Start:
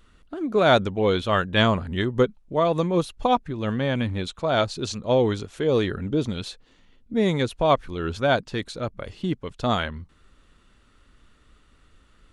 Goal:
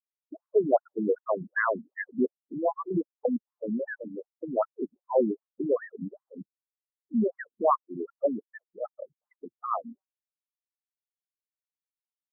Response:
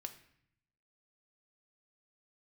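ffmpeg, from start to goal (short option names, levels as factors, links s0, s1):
-af "afftfilt=real='re*gte(hypot(re,im),0.0891)':imag='im*gte(hypot(re,im),0.0891)':win_size=1024:overlap=0.75,afftfilt=real='re*between(b*sr/1024,240*pow(1500/240,0.5+0.5*sin(2*PI*2.6*pts/sr))/1.41,240*pow(1500/240,0.5+0.5*sin(2*PI*2.6*pts/sr))*1.41)':imag='im*between(b*sr/1024,240*pow(1500/240,0.5+0.5*sin(2*PI*2.6*pts/sr))/1.41,240*pow(1500/240,0.5+0.5*sin(2*PI*2.6*pts/sr))*1.41)':win_size=1024:overlap=0.75"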